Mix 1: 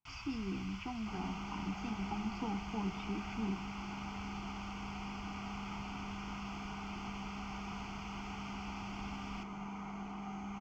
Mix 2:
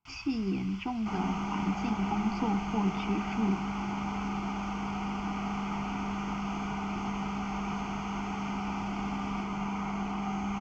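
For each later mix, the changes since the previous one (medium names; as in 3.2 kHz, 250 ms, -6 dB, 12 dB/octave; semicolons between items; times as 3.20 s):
speech +8.5 dB; second sound +10.5 dB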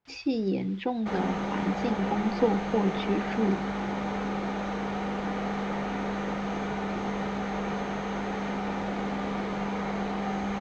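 first sound -11.5 dB; master: remove static phaser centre 2.6 kHz, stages 8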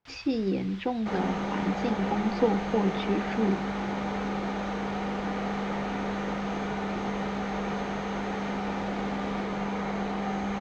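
first sound +8.5 dB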